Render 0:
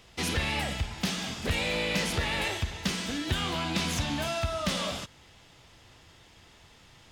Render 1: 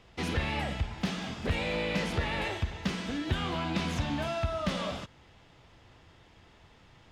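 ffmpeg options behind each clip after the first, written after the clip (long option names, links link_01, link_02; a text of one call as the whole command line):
ffmpeg -i in.wav -af "lowpass=frequency=1900:poles=1" out.wav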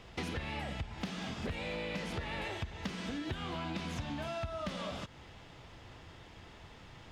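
ffmpeg -i in.wav -af "acompressor=threshold=-41dB:ratio=6,volume=4.5dB" out.wav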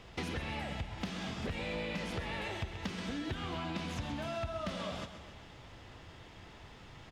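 ffmpeg -i in.wav -af "aecho=1:1:131|262|393|524|655|786:0.282|0.155|0.0853|0.0469|0.0258|0.0142" out.wav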